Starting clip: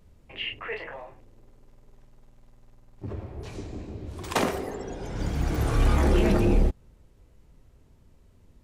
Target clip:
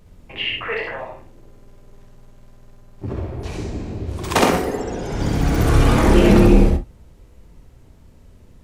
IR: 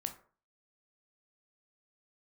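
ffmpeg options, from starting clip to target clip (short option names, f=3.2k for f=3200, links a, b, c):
-filter_complex "[0:a]asplit=2[a][b];[1:a]atrim=start_sample=2205,atrim=end_sample=3087,adelay=65[c];[b][c]afir=irnorm=-1:irlink=0,volume=-0.5dB[d];[a][d]amix=inputs=2:normalize=0,volume=7.5dB"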